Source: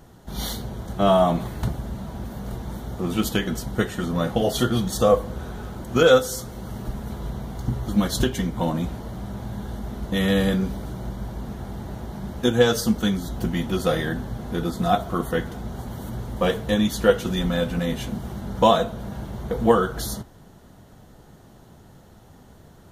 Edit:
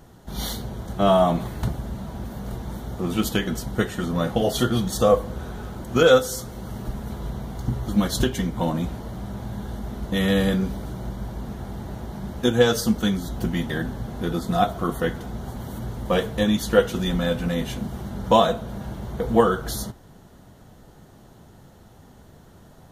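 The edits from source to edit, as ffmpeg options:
ffmpeg -i in.wav -filter_complex "[0:a]asplit=2[link_01][link_02];[link_01]atrim=end=13.702[link_03];[link_02]atrim=start=14.008[link_04];[link_03][link_04]acrossfade=duration=0.004:curve1=hsin:curve2=hsin" out.wav

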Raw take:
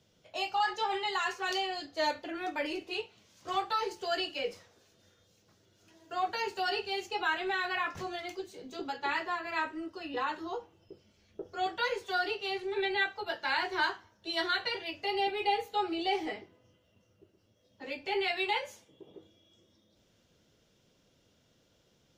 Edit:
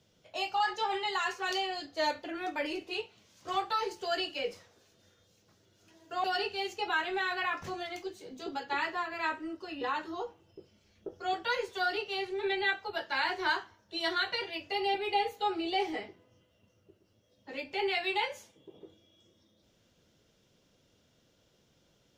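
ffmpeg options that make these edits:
ffmpeg -i in.wav -filter_complex "[0:a]asplit=2[link_01][link_02];[link_01]atrim=end=6.242[link_03];[link_02]atrim=start=6.568[link_04];[link_03][link_04]acrossfade=duration=0.004:curve1=hsin:curve2=hsin" out.wav

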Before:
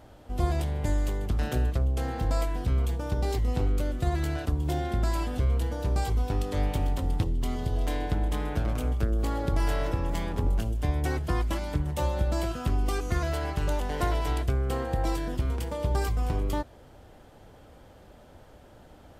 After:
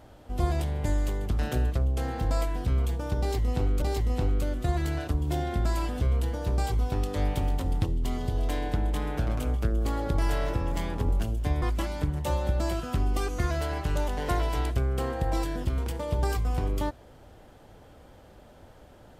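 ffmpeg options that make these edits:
ffmpeg -i in.wav -filter_complex "[0:a]asplit=3[link_01][link_02][link_03];[link_01]atrim=end=3.822[link_04];[link_02]atrim=start=3.198:end=11.002[link_05];[link_03]atrim=start=11.338[link_06];[link_04][link_05]acrossfade=duration=0.004:curve1=hsin:curve2=hsin[link_07];[link_07][link_06]acrossfade=duration=0.004:curve1=hsin:curve2=hsin" out.wav

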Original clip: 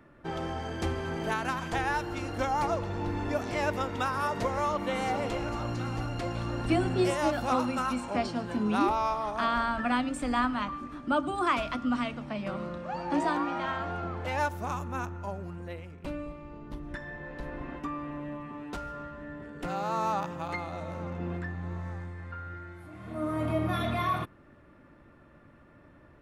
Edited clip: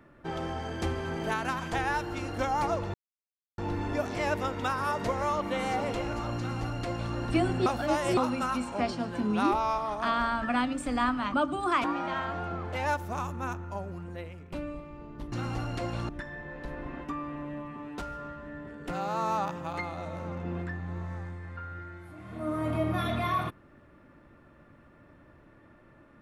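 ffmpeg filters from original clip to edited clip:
ffmpeg -i in.wav -filter_complex "[0:a]asplit=8[link_01][link_02][link_03][link_04][link_05][link_06][link_07][link_08];[link_01]atrim=end=2.94,asetpts=PTS-STARTPTS,afade=type=out:start_time=2.936:duration=0.004:curve=hsin,apad=pad_dur=0.64[link_09];[link_02]atrim=start=2.94:end=7.022,asetpts=PTS-STARTPTS,afade=type=in:duration=0.004:curve=hsin[link_10];[link_03]atrim=start=7.018:end=7.532,asetpts=PTS-STARTPTS,areverse[link_11];[link_04]atrim=start=7.528:end=10.702[link_12];[link_05]atrim=start=11.088:end=11.592[link_13];[link_06]atrim=start=13.358:end=16.842[link_14];[link_07]atrim=start=5.738:end=6.512[link_15];[link_08]atrim=start=16.838[link_16];[link_09][link_10]concat=n=2:v=0:a=1[link_17];[link_17][link_11]acrossfade=duration=0.004:curve1=hsin:curve2=hsin[link_18];[link_18][link_12]acrossfade=duration=0.004:curve1=hsin:curve2=hsin[link_19];[link_19][link_13]acrossfade=duration=0.004:curve1=hsin:curve2=hsin[link_20];[link_20][link_14]acrossfade=duration=0.004:curve1=hsin:curve2=hsin[link_21];[link_21][link_15]acrossfade=duration=0.004:curve1=hsin:curve2=hsin[link_22];[link_22][link_16]acrossfade=duration=0.004:curve1=hsin:curve2=hsin" out.wav

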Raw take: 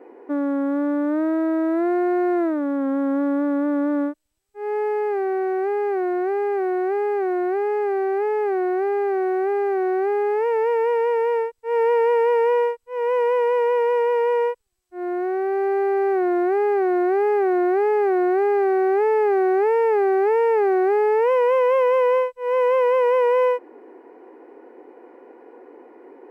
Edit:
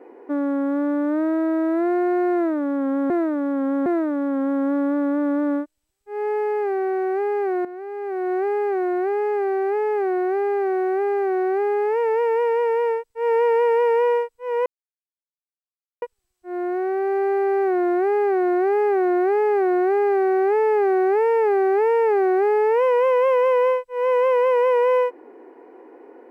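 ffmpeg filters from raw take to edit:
ffmpeg -i in.wav -filter_complex "[0:a]asplit=6[link_01][link_02][link_03][link_04][link_05][link_06];[link_01]atrim=end=3.102[link_07];[link_02]atrim=start=2.338:end=3.102[link_08];[link_03]atrim=start=2.338:end=6.13,asetpts=PTS-STARTPTS,afade=type=out:start_time=3.788:duration=0.004:curve=hsin:silence=0.237137[link_09];[link_04]atrim=start=6.13:end=13.14,asetpts=PTS-STARTPTS,afade=type=in:duration=0.68:curve=qua:silence=0.237137,afade=type=out:start_time=7.006:duration=0.004:curve=hsin[link_10];[link_05]atrim=start=13.14:end=14.5,asetpts=PTS-STARTPTS,volume=0[link_11];[link_06]atrim=start=14.5,asetpts=PTS-STARTPTS,afade=type=in:duration=0.004:curve=hsin[link_12];[link_07][link_08]acrossfade=duration=0.004:curve1=hsin:curve2=hsin[link_13];[link_09][link_10][link_11][link_12]concat=n=4:v=0:a=1[link_14];[link_13][link_14]acrossfade=duration=0.004:curve1=hsin:curve2=hsin" out.wav

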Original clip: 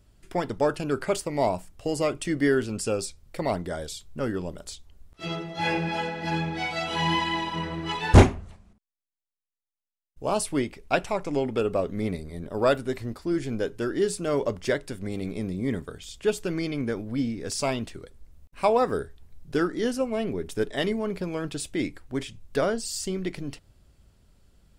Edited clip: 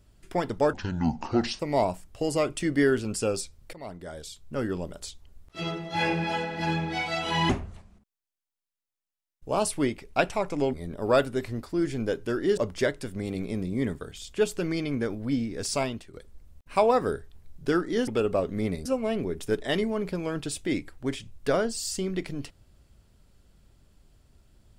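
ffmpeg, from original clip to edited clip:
ffmpeg -i in.wav -filter_complex "[0:a]asplit=10[link_01][link_02][link_03][link_04][link_05][link_06][link_07][link_08][link_09][link_10];[link_01]atrim=end=0.734[link_11];[link_02]atrim=start=0.73:end=1.24,asetpts=PTS-STARTPTS,asetrate=26019,aresample=44100,atrim=end_sample=38120,asetpts=PTS-STARTPTS[link_12];[link_03]atrim=start=1.236:end=3.38,asetpts=PTS-STARTPTS,afade=type=out:start_time=2.14:duration=0.004:curve=hsin:silence=0.112202[link_13];[link_04]atrim=start=3.38:end=7.142,asetpts=PTS-STARTPTS,afade=type=in:duration=1:silence=0.112202[link_14];[link_05]atrim=start=8.238:end=11.482[link_15];[link_06]atrim=start=12.258:end=14.102[link_16];[link_07]atrim=start=14.438:end=18,asetpts=PTS-STARTPTS,afade=type=out:start_time=3.182:duration=0.38:silence=0.266073[link_17];[link_08]atrim=start=18:end=19.942,asetpts=PTS-STARTPTS,afade=type=in:duration=0.004:curve=hsin:silence=0.266073[link_18];[link_09]atrim=start=11.478:end=12.262[link_19];[link_10]atrim=start=19.938[link_20];[link_11][link_12]acrossfade=duration=0.004:curve1=hsin:curve2=hsin[link_21];[link_13][link_14]concat=n=2:v=0:a=1[link_22];[link_21][link_22]acrossfade=duration=0.004:curve1=hsin:curve2=hsin[link_23];[link_23][link_15]acrossfade=duration=0.004:curve1=hsin:curve2=hsin[link_24];[link_24][link_16]acrossfade=duration=0.004:curve1=hsin:curve2=hsin[link_25];[link_17][link_18]concat=n=2:v=0:a=1[link_26];[link_25][link_26]acrossfade=duration=0.004:curve1=hsin:curve2=hsin[link_27];[link_27][link_19]acrossfade=duration=0.004:curve1=hsin:curve2=hsin[link_28];[link_28][link_20]acrossfade=duration=0.004:curve1=hsin:curve2=hsin" out.wav

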